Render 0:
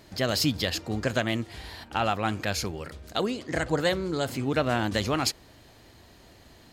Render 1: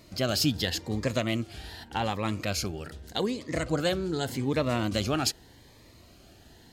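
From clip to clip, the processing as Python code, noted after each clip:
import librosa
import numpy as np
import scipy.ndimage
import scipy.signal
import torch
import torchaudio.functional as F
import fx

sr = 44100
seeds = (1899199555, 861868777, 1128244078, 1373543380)

y = fx.notch_cascade(x, sr, direction='rising', hz=0.84)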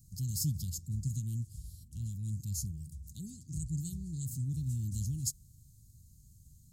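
y = scipy.signal.sosfilt(scipy.signal.ellip(3, 1.0, 60, [150.0, 7200.0], 'bandstop', fs=sr, output='sos'), x)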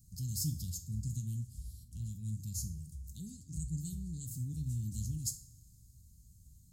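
y = fx.rev_double_slope(x, sr, seeds[0], early_s=0.39, late_s=2.1, knee_db=-22, drr_db=6.5)
y = y * librosa.db_to_amplitude(-2.5)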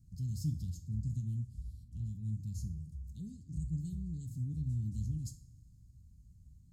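y = fx.lowpass(x, sr, hz=1100.0, slope=6)
y = y * librosa.db_to_amplitude(1.5)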